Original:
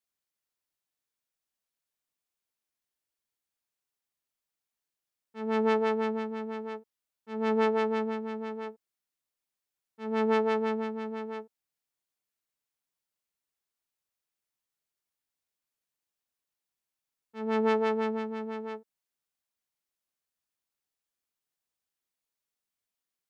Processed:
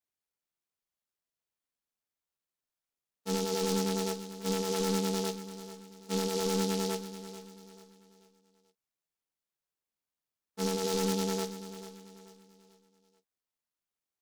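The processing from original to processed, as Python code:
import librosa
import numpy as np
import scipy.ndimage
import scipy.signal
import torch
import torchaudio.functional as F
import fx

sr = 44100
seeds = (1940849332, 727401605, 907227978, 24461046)

y = fx.noise_reduce_blind(x, sr, reduce_db=10)
y = fx.over_compress(y, sr, threshold_db=-31.0, ratio=-1.0)
y = fx.fold_sine(y, sr, drive_db=3, ceiling_db=-21.5)
y = fx.stretch_grains(y, sr, factor=0.61, grain_ms=24.0)
y = fx.echo_feedback(y, sr, ms=438, feedback_pct=38, wet_db=-13)
y = fx.noise_mod_delay(y, sr, seeds[0], noise_hz=4700.0, depth_ms=0.12)
y = y * librosa.db_to_amplitude(-2.0)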